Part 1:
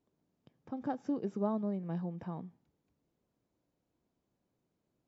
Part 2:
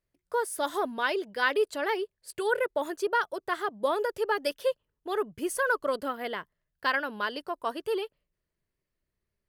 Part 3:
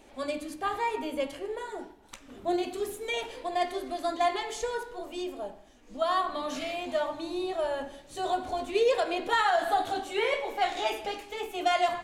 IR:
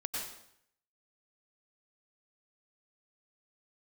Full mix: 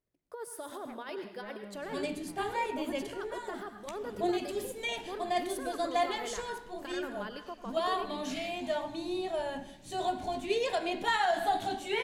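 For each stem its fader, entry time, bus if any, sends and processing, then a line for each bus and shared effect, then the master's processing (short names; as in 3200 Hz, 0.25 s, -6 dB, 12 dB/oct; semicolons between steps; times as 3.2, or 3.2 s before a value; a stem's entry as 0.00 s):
-3.0 dB, 0.00 s, bus A, no send, median filter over 41 samples; treble ducked by the level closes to 3000 Hz; bell 320 Hz -14.5 dB 2.8 oct
-13.5 dB, 0.00 s, bus A, send -7 dB, negative-ratio compressor -29 dBFS, ratio -0.5
-1.5 dB, 1.75 s, no bus, no send, thirty-one-band EQ 125 Hz +7 dB, 200 Hz +12 dB, 500 Hz -9 dB, 1250 Hz -9 dB
bus A: 0.0 dB, bell 500 Hz +5 dB 1.9 oct; limiter -35 dBFS, peak gain reduction 8.5 dB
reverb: on, RT60 0.70 s, pre-delay 87 ms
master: dry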